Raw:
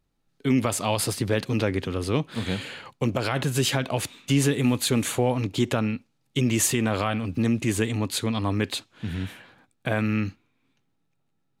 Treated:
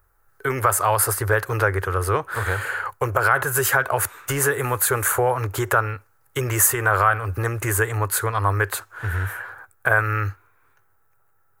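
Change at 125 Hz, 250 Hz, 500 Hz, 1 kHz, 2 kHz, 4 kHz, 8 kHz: +2.0, −9.5, +4.0, +11.0, +11.0, −6.0, +6.0 decibels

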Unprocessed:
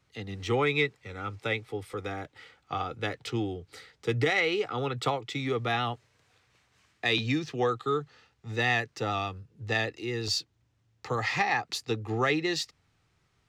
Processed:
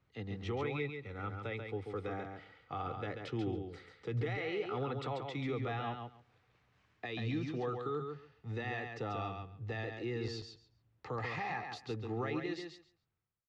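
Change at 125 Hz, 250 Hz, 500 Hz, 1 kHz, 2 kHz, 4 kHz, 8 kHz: −5.5 dB, −6.5 dB, −8.0 dB, −9.5 dB, −13.0 dB, −15.5 dB, below −20 dB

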